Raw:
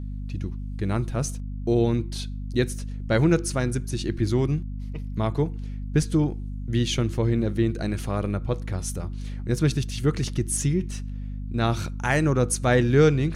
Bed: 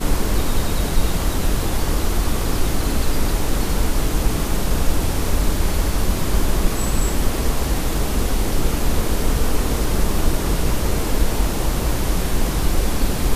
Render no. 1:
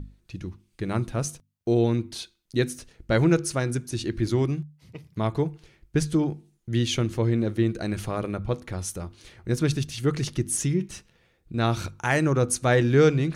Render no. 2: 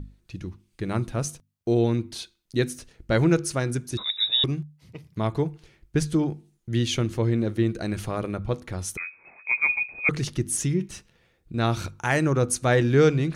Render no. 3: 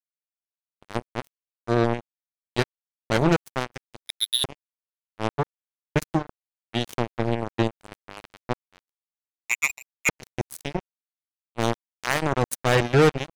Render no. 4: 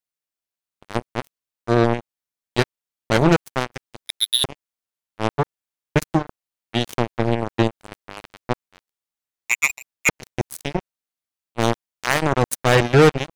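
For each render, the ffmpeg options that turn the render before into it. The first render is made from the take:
-af "bandreject=f=50:t=h:w=6,bandreject=f=100:t=h:w=6,bandreject=f=150:t=h:w=6,bandreject=f=200:t=h:w=6,bandreject=f=250:t=h:w=6"
-filter_complex "[0:a]asettb=1/sr,asplit=3[a][b][c];[a]atrim=end=3.974[d];[b]atrim=start=3.97:end=4.44,asetpts=PTS-STARTPTS,afade=t=in:d=0.004:c=qsin,afade=t=out:st=0.466:d=0.004:c=qsin,lowpass=f=3.3k:t=q:w=0.5098,lowpass=f=3.3k:t=q:w=0.6013,lowpass=f=3.3k:t=q:w=0.9,lowpass=f=3.3k:t=q:w=2.563,afreqshift=-3900[e];[c]atrim=start=4.436[f];[d][e]acrossfade=d=0.004:c1=hsin:c2=qsin[g];[g][f]acrossfade=d=0.004:c1=qsin:c2=hsin,asettb=1/sr,asplit=3[h][i][j];[h]atrim=end=8.974[k];[i]atrim=start=8.97:end=10.09,asetpts=PTS-STARTPTS,afade=t=in:d=0.004:c=qsin,afade=t=out:st=1.116:d=0.004:c=qsin,lowpass=f=2.2k:t=q:w=0.5098,lowpass=f=2.2k:t=q:w=0.6013,lowpass=f=2.2k:t=q:w=0.9,lowpass=f=2.2k:t=q:w=2.563,afreqshift=-2600[l];[j]atrim=start=10.086[m];[k][l]acrossfade=d=0.004:c1=hsin:c2=qsin[n];[n][m]acrossfade=d=0.004:c1=qsin:c2=hsin"
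-af "acrusher=bits=2:mix=0:aa=0.5"
-af "volume=4.5dB"

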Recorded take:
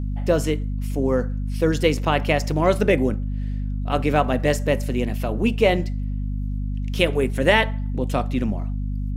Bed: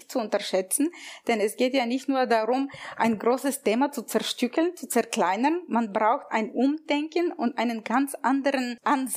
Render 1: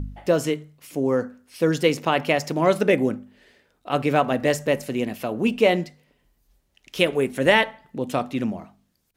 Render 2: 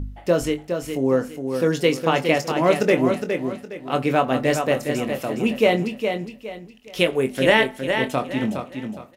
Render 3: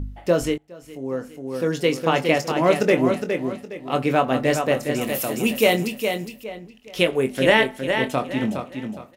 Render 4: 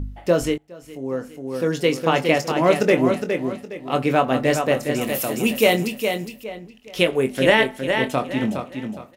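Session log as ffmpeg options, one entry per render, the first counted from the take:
-af "bandreject=f=50:t=h:w=4,bandreject=f=100:t=h:w=4,bandreject=f=150:t=h:w=4,bandreject=f=200:t=h:w=4,bandreject=f=250:t=h:w=4"
-filter_complex "[0:a]asplit=2[a][b];[b]adelay=23,volume=-9dB[c];[a][c]amix=inputs=2:normalize=0,asplit=2[d][e];[e]aecho=0:1:413|826|1239|1652:0.473|0.147|0.0455|0.0141[f];[d][f]amix=inputs=2:normalize=0"
-filter_complex "[0:a]asettb=1/sr,asplit=3[a][b][c];[a]atrim=end=3.564[d];[b]atrim=start=3.56:end=3.96,asetpts=PTS-STARTPTS,afade=t=in:d=0.004:c=qsin,afade=t=out:st=0.396:d=0.004:c=qsin,bandreject=f=1.5k:w=7.5[e];[c]atrim=start=3.956[f];[d][e]acrossfade=d=0.004:c1=hsin:c2=qsin[g];[g][f]acrossfade=d=0.004:c1=qsin:c2=hsin,asettb=1/sr,asplit=3[h][i][j];[h]atrim=end=5.014[k];[i]atrim=start=5.01:end=6.44,asetpts=PTS-STARTPTS,afade=t=in:d=0.004:c=qsin,afade=t=out:st=1.426:d=0.004:c=qsin,aemphasis=mode=production:type=75fm[l];[j]atrim=start=6.436[m];[k][l]acrossfade=d=0.004:c1=hsin:c2=qsin[n];[n][m]acrossfade=d=0.004:c1=qsin:c2=hsin,asplit=2[o][p];[o]atrim=end=0.58,asetpts=PTS-STARTPTS,afade=t=out:st=0.576:d=0.004:c=hsin:silence=0.0630957[q];[p]atrim=start=0.58,asetpts=PTS-STARTPTS,afade=t=in:d=1.56:silence=0.0630957[r];[q][r]concat=n=2:v=0:a=1"
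-af "volume=1dB,alimiter=limit=-3dB:level=0:latency=1"

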